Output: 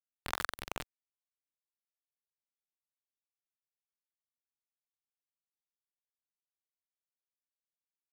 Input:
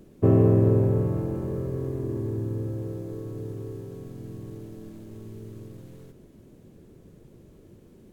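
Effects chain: vibrato 0.6 Hz 40 cents; Chebyshev shaper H 4 -32 dB, 5 -12 dB, 8 -39 dB, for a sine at -6.5 dBFS; spectral gate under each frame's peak -25 dB weak; treble shelf 2.2 kHz +2.5 dB; small samples zeroed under -26.5 dBFS; bass shelf 120 Hz +11 dB; trim +3 dB

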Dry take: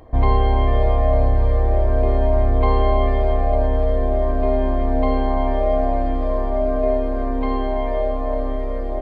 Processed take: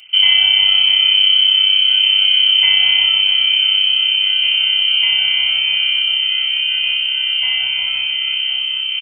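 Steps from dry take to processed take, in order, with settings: sorted samples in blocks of 8 samples; frequency inversion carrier 3.1 kHz; comb 1.4 ms, depth 70%

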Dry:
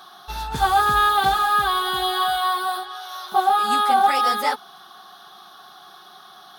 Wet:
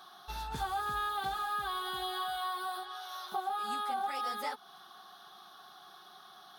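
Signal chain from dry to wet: compression 2.5:1, threshold -27 dBFS, peak gain reduction 10 dB; trim -9 dB

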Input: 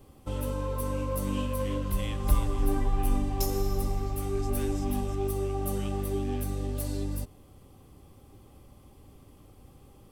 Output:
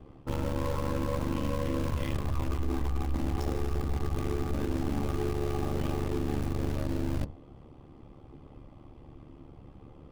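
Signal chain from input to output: FDN reverb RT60 0.38 s, low-frequency decay 1×, high-frequency decay 0.4×, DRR 7.5 dB; peak limiter -21 dBFS, peak gain reduction 10 dB; Bessel low-pass 2.2 kHz, order 2; in parallel at -8.5 dB: bit crusher 5-bit; on the sum: ring modulator 36 Hz; reverse; compression, threshold -31 dBFS, peak gain reduction 8.5 dB; reverse; trim +5.5 dB

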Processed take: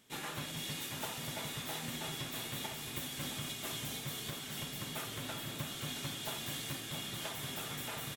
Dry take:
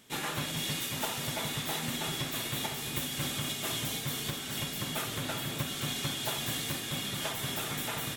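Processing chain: feedback delay 672 ms, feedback 48%, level -10 dB; trim -7 dB

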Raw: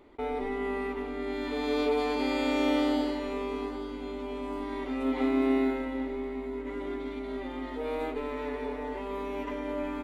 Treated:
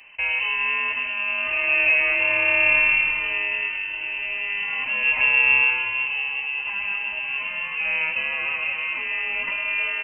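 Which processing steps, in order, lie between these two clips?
peaking EQ 63 Hz -10.5 dB 2 oct; frequency inversion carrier 3 kHz; trim +9 dB

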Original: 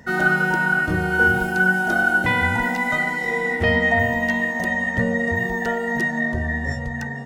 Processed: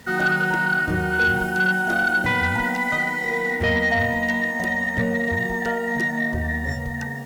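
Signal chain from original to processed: bit crusher 8-bit; Chebyshev shaper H 5 -18 dB, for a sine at -5 dBFS; trim -4.5 dB

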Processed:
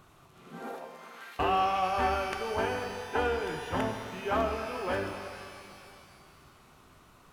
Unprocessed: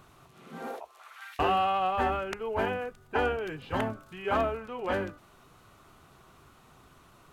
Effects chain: pitch-shifted reverb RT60 2.4 s, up +12 st, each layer -8 dB, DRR 5 dB; trim -2 dB

